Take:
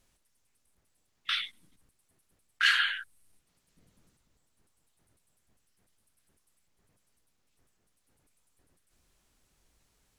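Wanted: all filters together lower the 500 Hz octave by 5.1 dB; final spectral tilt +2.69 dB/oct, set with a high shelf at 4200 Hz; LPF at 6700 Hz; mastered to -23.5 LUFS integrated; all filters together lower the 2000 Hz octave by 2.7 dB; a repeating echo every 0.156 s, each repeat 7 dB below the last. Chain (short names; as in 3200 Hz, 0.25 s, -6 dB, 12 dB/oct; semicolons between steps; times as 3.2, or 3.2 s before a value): LPF 6700 Hz; bell 500 Hz -6.5 dB; bell 2000 Hz -4.5 dB; high shelf 4200 Hz +7 dB; feedback echo 0.156 s, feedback 45%, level -7 dB; gain +6.5 dB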